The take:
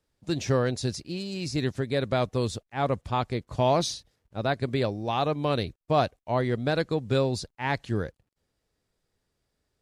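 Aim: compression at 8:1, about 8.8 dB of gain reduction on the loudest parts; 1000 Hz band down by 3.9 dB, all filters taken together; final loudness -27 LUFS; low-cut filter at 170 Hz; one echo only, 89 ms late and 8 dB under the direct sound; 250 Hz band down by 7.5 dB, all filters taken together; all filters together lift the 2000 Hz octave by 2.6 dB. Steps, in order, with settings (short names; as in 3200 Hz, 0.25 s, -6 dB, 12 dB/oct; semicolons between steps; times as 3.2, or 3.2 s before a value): HPF 170 Hz; bell 250 Hz -8.5 dB; bell 1000 Hz -6 dB; bell 2000 Hz +5.5 dB; compressor 8:1, threshold -31 dBFS; echo 89 ms -8 dB; gain +9 dB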